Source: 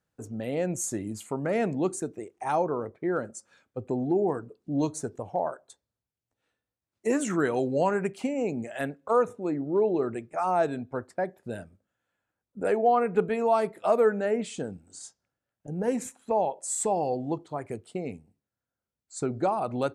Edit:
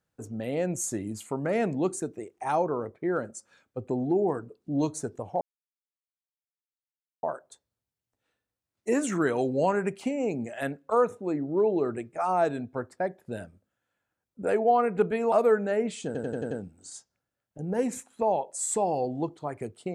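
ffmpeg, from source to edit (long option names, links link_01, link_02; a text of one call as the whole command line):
ffmpeg -i in.wav -filter_complex "[0:a]asplit=8[link_01][link_02][link_03][link_04][link_05][link_06][link_07][link_08];[link_01]atrim=end=5.41,asetpts=PTS-STARTPTS,afade=type=out:start_time=5.406:duration=0.004:curve=hsin,apad=pad_dur=1.82[link_09];[link_02]atrim=start=5.41:end=13.502,asetpts=PTS-STARTPTS,afade=type=in:duration=0.004:curve=hsin[link_10];[link_03]atrim=start=13.858:end=14.692[link_11];[link_04]atrim=start=14.598:end=14.692[link_12];[link_05]atrim=start=14.598:end=14.692[link_13];[link_06]atrim=start=14.598:end=14.692[link_14];[link_07]atrim=start=14.598:end=14.692[link_15];[link_08]atrim=start=14.598[link_16];[link_09][link_10]concat=n=2:v=0:a=1[link_17];[link_17][link_11]acrossfade=duration=0.004:curve1=hsin:curve2=hsin[link_18];[link_18][link_12]acrossfade=duration=0.004:curve1=hsin:curve2=hsin[link_19];[link_19][link_13]acrossfade=duration=0.004:curve1=hsin:curve2=hsin[link_20];[link_20][link_14]acrossfade=duration=0.004:curve1=hsin:curve2=hsin[link_21];[link_21][link_15]acrossfade=duration=0.004:curve1=hsin:curve2=hsin[link_22];[link_22][link_16]acrossfade=duration=0.004:curve1=hsin:curve2=hsin" out.wav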